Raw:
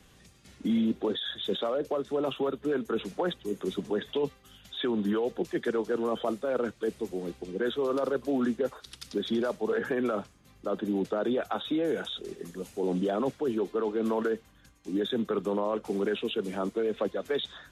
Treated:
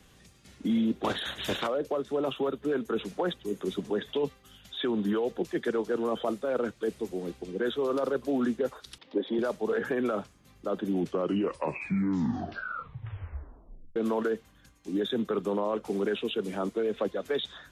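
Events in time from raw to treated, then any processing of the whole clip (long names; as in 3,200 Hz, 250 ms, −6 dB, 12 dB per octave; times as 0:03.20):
0:01.03–0:01.66: ceiling on every frequency bin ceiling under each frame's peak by 25 dB
0:08.98–0:09.39: loudspeaker in its box 290–3,000 Hz, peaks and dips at 290 Hz +7 dB, 540 Hz +9 dB, 890 Hz +8 dB, 1,400 Hz −10 dB, 2,500 Hz −4 dB
0:10.79: tape stop 3.17 s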